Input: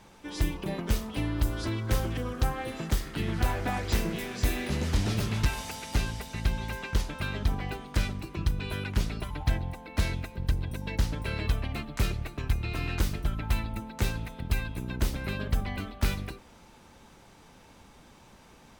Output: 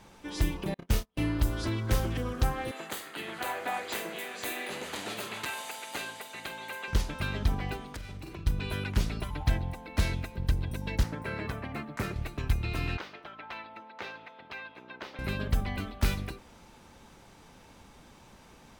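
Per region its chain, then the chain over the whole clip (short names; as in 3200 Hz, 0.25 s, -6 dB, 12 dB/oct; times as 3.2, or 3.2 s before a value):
0.74–1.39 gate -32 dBFS, range -40 dB + doubler 30 ms -5.5 dB
2.71–6.88 HPF 470 Hz + bell 5400 Hz -12 dB 0.3 oct + doubler 47 ms -12 dB
7.89–8.47 doubler 43 ms -6 dB + compressor 10:1, threshold -37 dBFS
11.03–12.16 HPF 140 Hz + resonant high shelf 2400 Hz -7 dB, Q 1.5
12.97–15.19 HPF 610 Hz + air absorption 270 m
whole clip: dry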